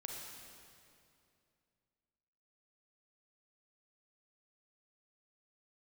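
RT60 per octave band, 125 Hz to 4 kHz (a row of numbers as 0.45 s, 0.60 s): 3.0 s, 2.9 s, 2.7 s, 2.4 s, 2.3 s, 2.1 s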